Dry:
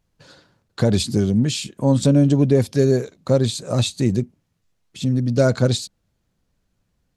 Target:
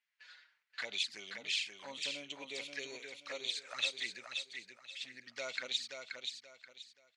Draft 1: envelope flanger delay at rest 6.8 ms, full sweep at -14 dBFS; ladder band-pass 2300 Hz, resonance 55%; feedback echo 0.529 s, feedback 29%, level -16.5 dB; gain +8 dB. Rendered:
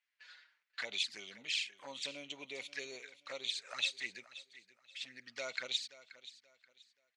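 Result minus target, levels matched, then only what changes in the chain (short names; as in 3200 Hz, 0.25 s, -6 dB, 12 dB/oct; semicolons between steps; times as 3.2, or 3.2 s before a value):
echo-to-direct -11 dB
change: feedback echo 0.529 s, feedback 29%, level -5.5 dB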